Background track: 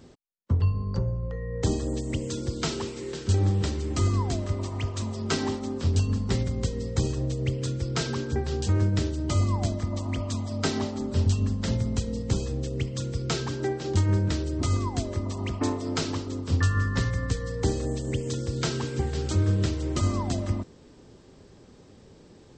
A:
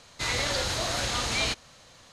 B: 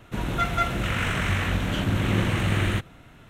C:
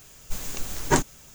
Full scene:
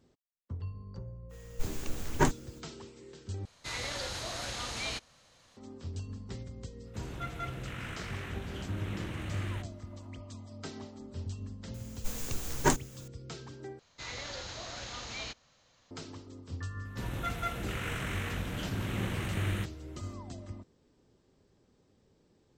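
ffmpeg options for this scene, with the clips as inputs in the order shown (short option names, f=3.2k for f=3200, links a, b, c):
-filter_complex "[3:a]asplit=2[a][b];[1:a]asplit=2[c][d];[2:a]asplit=2[e][f];[0:a]volume=-16dB[g];[a]bass=f=250:g=3,treble=f=4k:g=-6[h];[d]aresample=16000,aresample=44100[i];[f]highshelf=f=9.2k:g=9.5[j];[g]asplit=3[k][l][m];[k]atrim=end=3.454[n];[c]atrim=end=2.12,asetpts=PTS-STARTPTS,volume=-9dB[o];[l]atrim=start=5.566:end=13.794[p];[i]atrim=end=2.12,asetpts=PTS-STARTPTS,volume=-13dB[q];[m]atrim=start=15.906[r];[h]atrim=end=1.34,asetpts=PTS-STARTPTS,volume=-5.5dB,afade=t=in:d=0.05,afade=t=out:st=1.29:d=0.05,adelay=1290[s];[e]atrim=end=3.29,asetpts=PTS-STARTPTS,volume=-15.5dB,afade=t=in:d=0.05,afade=t=out:st=3.24:d=0.05,adelay=300762S[t];[b]atrim=end=1.34,asetpts=PTS-STARTPTS,volume=-5dB,afade=t=in:d=0.004:c=hsin,afade=t=out:st=1.336:d=0.004:c=hsin,adelay=11740[u];[j]atrim=end=3.29,asetpts=PTS-STARTPTS,volume=-11dB,afade=t=in:d=0.004:c=hsin,afade=t=out:st=3.286:d=0.004:c=hsin,adelay=16850[v];[n][o]acrossfade=d=0.004:c1=hsin:c2=hsin[w];[w][p]acrossfade=d=0.004:c1=hsin:c2=hsin[x];[x][q]acrossfade=d=0.004:c1=hsin:c2=hsin[y];[y][r]acrossfade=d=0.004:c1=hsin:c2=hsin[z];[z][s][t][u][v]amix=inputs=5:normalize=0"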